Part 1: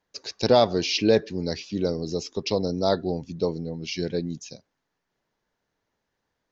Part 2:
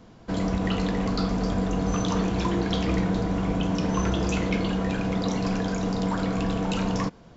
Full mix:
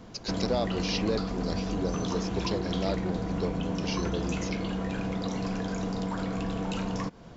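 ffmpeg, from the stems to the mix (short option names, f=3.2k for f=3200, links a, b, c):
-filter_complex "[0:a]acompressor=threshold=-38dB:ratio=2,volume=1.5dB[a];[1:a]acompressor=threshold=-31dB:ratio=6,volume=2.5dB[b];[a][b]amix=inputs=2:normalize=0"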